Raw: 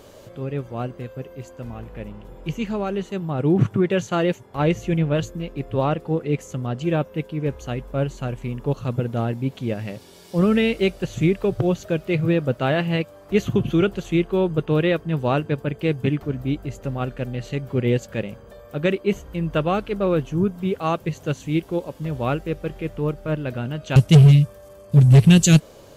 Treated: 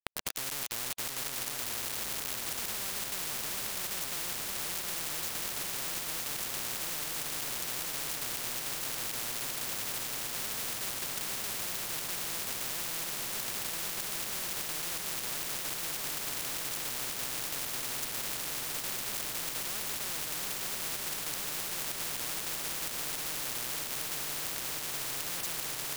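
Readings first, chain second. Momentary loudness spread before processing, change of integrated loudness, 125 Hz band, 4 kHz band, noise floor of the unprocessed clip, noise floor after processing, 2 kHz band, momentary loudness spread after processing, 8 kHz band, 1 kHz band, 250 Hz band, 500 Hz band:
13 LU, -11.5 dB, -32.5 dB, -1.0 dB, -46 dBFS, -38 dBFS, -7.0 dB, 0 LU, +3.0 dB, -12.0 dB, -28.5 dB, -23.5 dB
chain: reverse; compressor 8:1, threshold -30 dBFS, peak gain reduction 21 dB; reverse; whine 2800 Hz -50 dBFS; soft clip -37 dBFS, distortion -7 dB; companded quantiser 2-bit; on a send: swung echo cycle 0.956 s, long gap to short 3:1, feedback 78%, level -7 dB; on the sum: spectral compressor 10:1

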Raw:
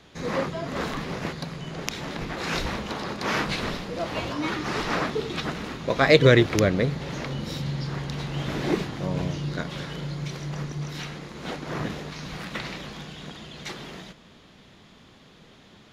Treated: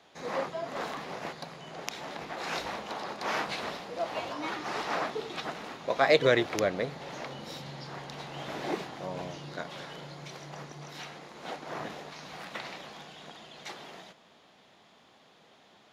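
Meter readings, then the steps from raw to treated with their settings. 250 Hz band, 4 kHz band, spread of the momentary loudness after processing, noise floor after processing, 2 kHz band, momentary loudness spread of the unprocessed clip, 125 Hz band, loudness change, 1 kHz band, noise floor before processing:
-11.5 dB, -6.5 dB, 14 LU, -60 dBFS, -6.0 dB, 15 LU, -16.5 dB, -7.0 dB, -2.5 dB, -53 dBFS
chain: HPF 410 Hz 6 dB/oct; bell 740 Hz +7.5 dB 0.86 oct; gain -6.5 dB

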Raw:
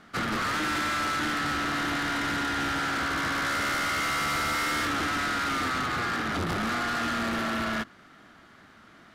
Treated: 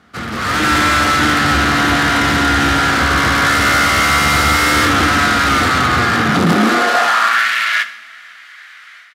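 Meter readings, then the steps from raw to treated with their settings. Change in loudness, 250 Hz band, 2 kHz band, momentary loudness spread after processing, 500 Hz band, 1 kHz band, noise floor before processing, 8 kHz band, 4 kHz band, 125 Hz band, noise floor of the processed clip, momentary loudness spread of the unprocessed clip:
+15.0 dB, +14.5 dB, +15.5 dB, 3 LU, +15.0 dB, +15.0 dB, -54 dBFS, +15.0 dB, +15.0 dB, +17.5 dB, -39 dBFS, 2 LU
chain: high-pass sweep 67 Hz -> 2000 Hz, 6.05–7.48; AGC gain up to 13 dB; on a send: echo 0.146 s -24 dB; on the sum: two-slope reverb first 0.45 s, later 2.2 s, from -18 dB, DRR 8.5 dB; gain +1.5 dB

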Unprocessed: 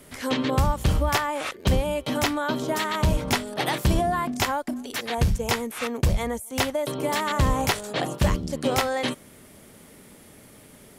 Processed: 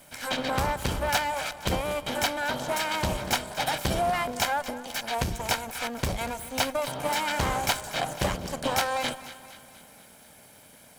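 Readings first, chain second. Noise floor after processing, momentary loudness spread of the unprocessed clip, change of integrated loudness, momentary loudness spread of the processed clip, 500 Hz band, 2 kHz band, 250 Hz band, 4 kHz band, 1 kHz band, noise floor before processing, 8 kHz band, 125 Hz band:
-53 dBFS, 6 LU, -3.0 dB, 6 LU, -3.5 dB, -0.5 dB, -7.5 dB, -0.5 dB, -1.0 dB, -50 dBFS, 0.0 dB, -8.5 dB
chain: minimum comb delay 1.3 ms; low shelf 160 Hz -12 dB; split-band echo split 930 Hz, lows 0.179 s, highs 0.24 s, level -14.5 dB

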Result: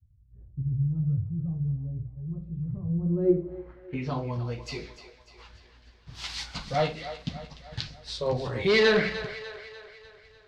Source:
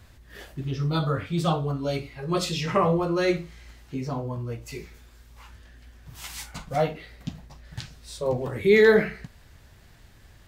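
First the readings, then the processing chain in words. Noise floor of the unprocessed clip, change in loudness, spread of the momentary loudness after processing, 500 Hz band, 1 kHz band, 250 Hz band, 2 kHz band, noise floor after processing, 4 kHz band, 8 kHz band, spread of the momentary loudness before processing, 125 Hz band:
-53 dBFS, -4.0 dB, 18 LU, -4.5 dB, -6.0 dB, -2.5 dB, -2.0 dB, -57 dBFS, +1.0 dB, -7.0 dB, 20 LU, 0.0 dB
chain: expander -42 dBFS; dynamic EQ 330 Hz, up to -4 dB, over -33 dBFS, Q 1; hard clip -18.5 dBFS, distortion -13 dB; low-pass sweep 110 Hz -> 4500 Hz, 2.88–4.19; wow and flutter 25 cents; on a send: split-band echo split 430 Hz, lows 81 ms, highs 0.297 s, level -12 dB

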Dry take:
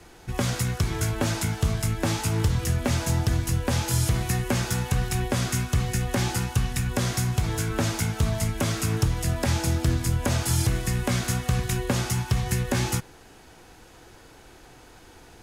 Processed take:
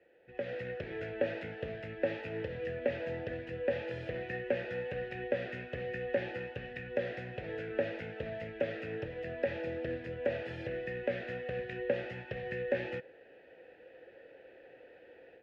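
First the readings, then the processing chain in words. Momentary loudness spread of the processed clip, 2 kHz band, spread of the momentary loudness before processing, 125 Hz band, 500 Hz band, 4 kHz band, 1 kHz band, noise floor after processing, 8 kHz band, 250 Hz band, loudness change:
20 LU, -7.5 dB, 2 LU, -22.5 dB, -0.5 dB, -19.0 dB, -15.0 dB, -58 dBFS, under -40 dB, -14.5 dB, -12.0 dB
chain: AGC gain up to 10 dB; vowel filter e; air absorption 360 m; gain -1.5 dB

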